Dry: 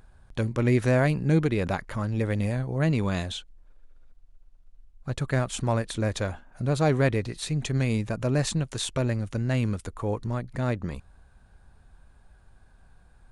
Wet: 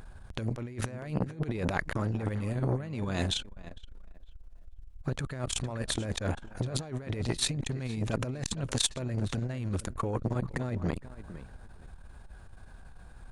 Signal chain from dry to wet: negative-ratio compressor -30 dBFS, ratio -0.5; tape echo 0.463 s, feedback 25%, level -15 dB, low-pass 2400 Hz; core saturation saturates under 740 Hz; gain +2.5 dB

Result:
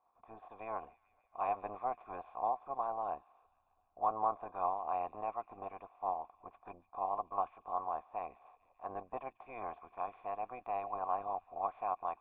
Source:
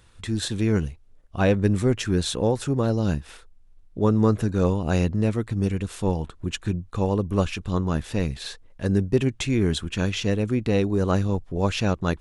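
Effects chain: spectral limiter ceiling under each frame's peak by 23 dB; bell 130 Hz -6 dB 0.75 oct; in parallel at -9 dB: sample gate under -19 dBFS; on the sum: dynamic EQ 2500 Hz, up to +4 dB, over -33 dBFS, Q 0.96; vocal tract filter a; on a send: thin delay 0.145 s, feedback 75%, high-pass 3400 Hz, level -12.5 dB; on the sum: gain -4.5 dB

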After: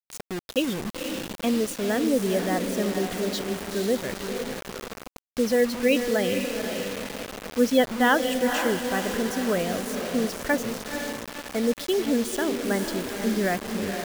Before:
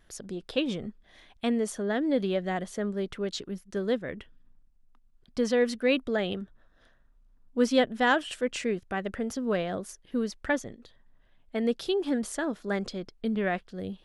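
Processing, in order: spectral gate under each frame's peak -25 dB strong; diffused feedback echo 0.49 s, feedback 52%, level -6 dB; requantised 6-bit, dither none; gain +3 dB

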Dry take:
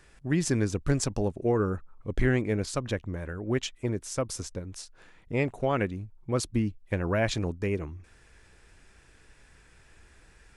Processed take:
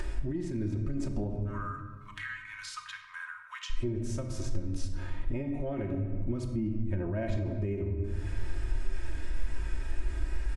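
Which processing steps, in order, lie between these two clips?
harmonic-percussive split percussive -13 dB; soft clip -15.5 dBFS, distortion -25 dB; 1.29–3.7 rippled Chebyshev high-pass 1000 Hz, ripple 3 dB; upward compressor, threshold -34 dBFS; shoebox room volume 810 m³, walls mixed, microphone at 0.93 m; limiter -25 dBFS, peak gain reduction 10 dB; compressor, threshold -35 dBFS, peak gain reduction 7 dB; tilt -2 dB/oct; comb 3.2 ms, depth 73%; gain +1.5 dB

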